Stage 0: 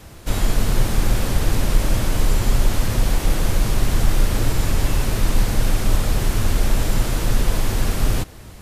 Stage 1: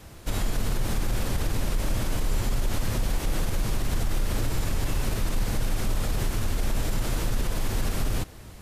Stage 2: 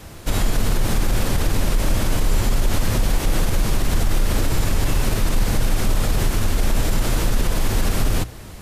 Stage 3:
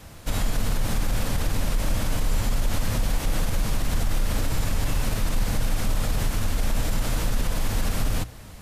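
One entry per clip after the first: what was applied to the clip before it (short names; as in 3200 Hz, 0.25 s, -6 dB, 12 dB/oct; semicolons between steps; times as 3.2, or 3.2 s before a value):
limiter -12.5 dBFS, peak gain reduction 8 dB; gain -4.5 dB
notches 60/120 Hz; gain +7.5 dB
bell 370 Hz -9 dB 0.28 oct; gain -5 dB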